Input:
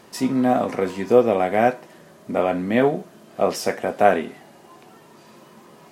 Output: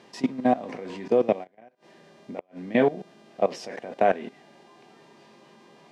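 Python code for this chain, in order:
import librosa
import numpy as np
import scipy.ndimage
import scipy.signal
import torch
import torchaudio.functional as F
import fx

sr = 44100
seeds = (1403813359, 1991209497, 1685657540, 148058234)

y = fx.peak_eq(x, sr, hz=1300.0, db=-8.0, octaves=0.34)
y = fx.level_steps(y, sr, step_db=18)
y = fx.dmg_buzz(y, sr, base_hz=400.0, harmonics=38, level_db=-59.0, tilt_db=-3, odd_only=False)
y = fx.gate_flip(y, sr, shuts_db=-25.0, range_db=-31, at=(1.43, 2.59), fade=0.02)
y = fx.bandpass_edges(y, sr, low_hz=130.0, high_hz=4700.0)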